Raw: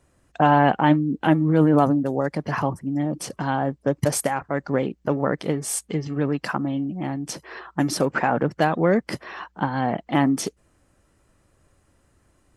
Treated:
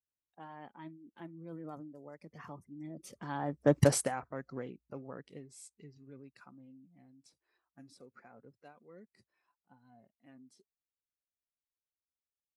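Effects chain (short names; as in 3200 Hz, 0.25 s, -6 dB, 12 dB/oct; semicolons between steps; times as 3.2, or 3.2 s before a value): Doppler pass-by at 3.78, 18 m/s, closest 1.6 m; spectral noise reduction 12 dB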